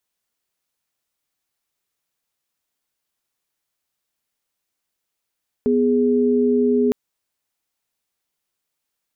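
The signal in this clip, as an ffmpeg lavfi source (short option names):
-f lavfi -i "aevalsrc='0.141*(sin(2*PI*246.94*t)+sin(2*PI*415.3*t))':d=1.26:s=44100"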